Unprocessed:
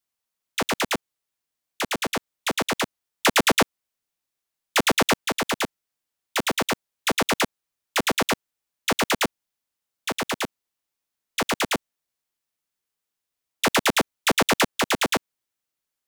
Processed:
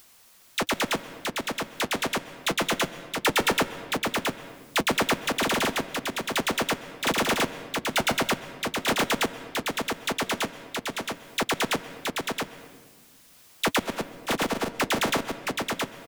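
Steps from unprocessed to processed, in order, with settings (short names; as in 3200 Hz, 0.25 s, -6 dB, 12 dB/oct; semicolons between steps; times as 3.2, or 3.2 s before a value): 13.81–14.8 gate -17 dBFS, range -26 dB; in parallel at 0 dB: upward compressor, threshold -22 dBFS; on the sum: soft clip -12 dBFS, distortion -15 dB; flange 1.3 Hz, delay 2.3 ms, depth 8.3 ms, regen -53%; echo 0.671 s -4 dB; on a send at -14 dB: reverb RT60 1.4 s, pre-delay 0.123 s; on the sum: gain -2 dB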